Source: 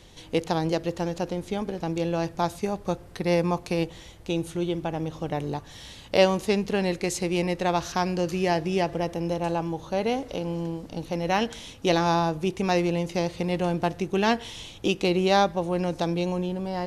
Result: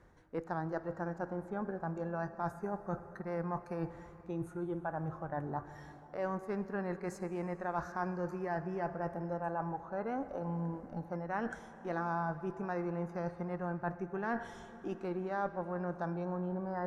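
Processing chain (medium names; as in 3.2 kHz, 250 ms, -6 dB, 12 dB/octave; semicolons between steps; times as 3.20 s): spectral noise reduction 9 dB; Chebyshev shaper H 8 -32 dB, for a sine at -5 dBFS; reverse; compression 6:1, threshold -34 dBFS, peak gain reduction 19 dB; reverse; resonant high shelf 2.2 kHz -13 dB, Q 3; on a send: reverberation RT60 4.7 s, pre-delay 62 ms, DRR 12.5 dB; on the sum: trim -1.5 dB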